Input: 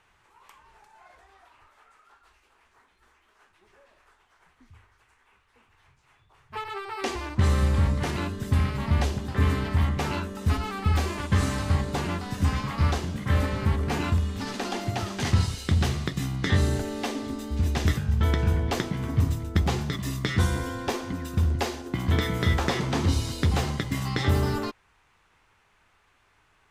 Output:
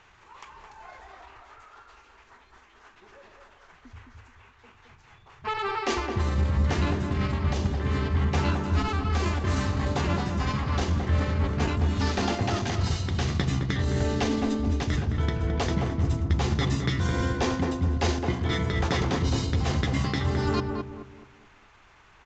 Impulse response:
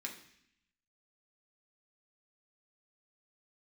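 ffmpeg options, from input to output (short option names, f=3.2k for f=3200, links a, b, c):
-filter_complex "[0:a]areverse,acompressor=threshold=-31dB:ratio=8,areverse,aresample=16000,aresample=44100,atempo=1.2,asplit=2[a][b];[b]adelay=214,lowpass=f=1.2k:p=1,volume=-3.5dB,asplit=2[c][d];[d]adelay=214,lowpass=f=1.2k:p=1,volume=0.37,asplit=2[e][f];[f]adelay=214,lowpass=f=1.2k:p=1,volume=0.37,asplit=2[g][h];[h]adelay=214,lowpass=f=1.2k:p=1,volume=0.37,asplit=2[i][j];[j]adelay=214,lowpass=f=1.2k:p=1,volume=0.37[k];[a][c][e][g][i][k]amix=inputs=6:normalize=0,volume=7.5dB"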